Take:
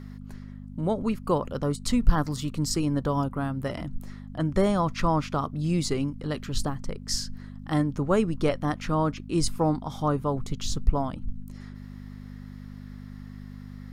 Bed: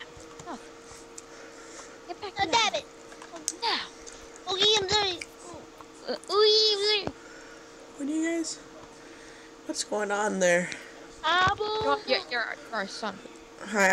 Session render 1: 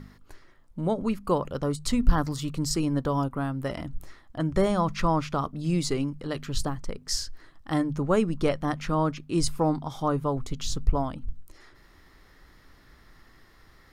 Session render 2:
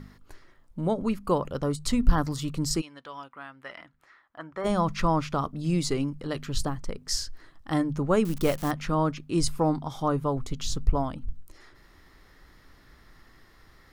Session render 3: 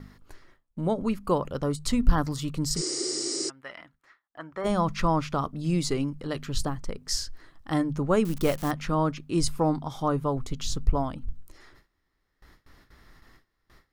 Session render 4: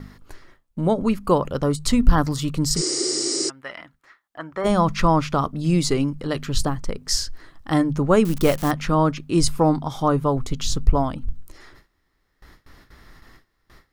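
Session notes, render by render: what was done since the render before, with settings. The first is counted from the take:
hum removal 50 Hz, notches 5
0:02.80–0:04.64: resonant band-pass 3,000 Hz → 1,200 Hz, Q 1.4; 0:08.25–0:08.71: spike at every zero crossing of −25.5 dBFS
noise gate with hold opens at −44 dBFS; 0:02.79–0:03.47: healed spectral selection 240–9,500 Hz before
level +6.5 dB; brickwall limiter −2 dBFS, peak gain reduction 2 dB

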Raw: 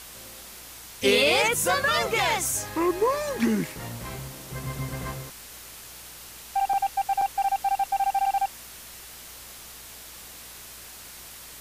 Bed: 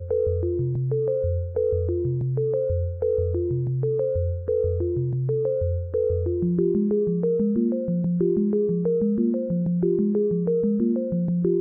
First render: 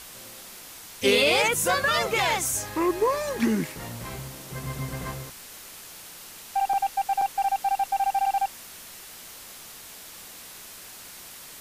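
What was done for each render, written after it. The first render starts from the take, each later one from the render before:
hum removal 60 Hz, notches 2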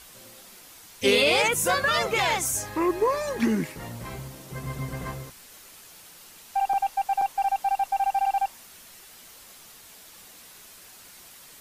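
broadband denoise 6 dB, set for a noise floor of −44 dBFS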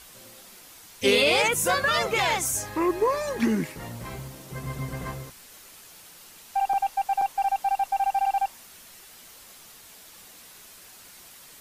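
0:04.00–0:04.55: one scale factor per block 7 bits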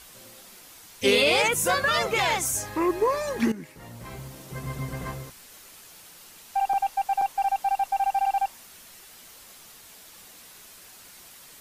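0:03.52–0:04.40: fade in, from −15.5 dB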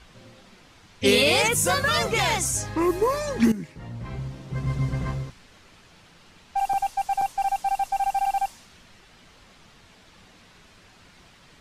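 low-pass that shuts in the quiet parts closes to 2,700 Hz, open at −19 dBFS
bass and treble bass +9 dB, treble +5 dB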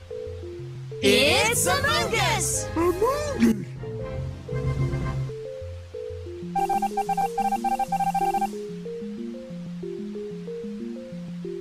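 mix in bed −11.5 dB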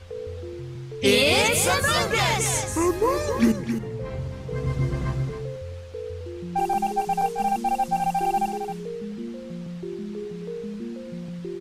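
single-tap delay 267 ms −8 dB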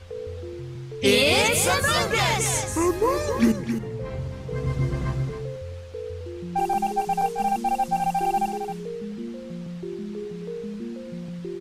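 no processing that can be heard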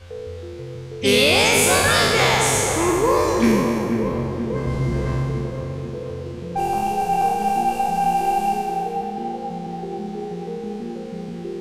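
peak hold with a decay on every bin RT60 1.57 s
tape delay 485 ms, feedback 75%, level −5 dB, low-pass 1,100 Hz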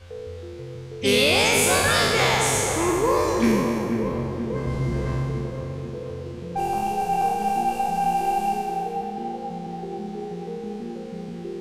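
level −3 dB

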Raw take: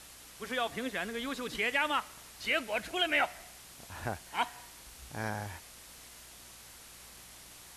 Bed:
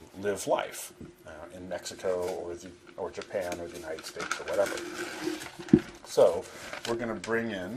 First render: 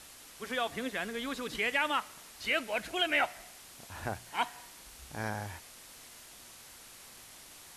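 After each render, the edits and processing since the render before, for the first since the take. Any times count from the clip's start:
hum removal 60 Hz, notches 3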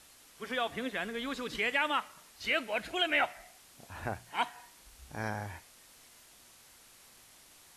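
noise reduction from a noise print 6 dB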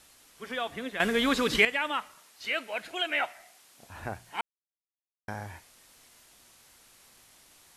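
0:01.00–0:01.65: clip gain +11.5 dB
0:02.15–0:03.82: high-pass filter 360 Hz 6 dB per octave
0:04.41–0:05.28: silence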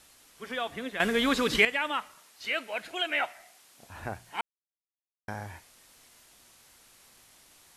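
no processing that can be heard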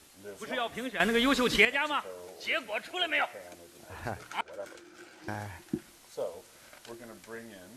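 mix in bed −14.5 dB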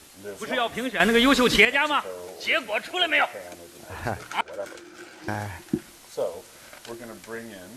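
level +7.5 dB
brickwall limiter −3 dBFS, peak gain reduction 2.5 dB

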